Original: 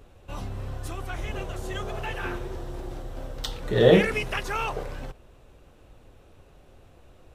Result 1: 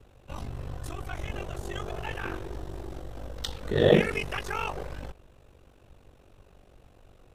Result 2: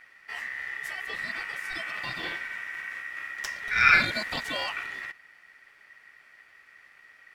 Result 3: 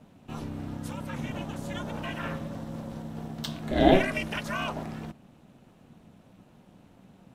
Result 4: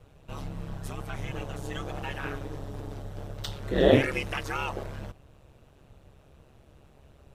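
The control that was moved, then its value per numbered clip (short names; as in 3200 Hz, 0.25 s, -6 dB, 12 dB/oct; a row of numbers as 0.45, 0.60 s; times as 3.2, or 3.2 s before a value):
ring modulator, frequency: 24, 1900, 190, 69 Hz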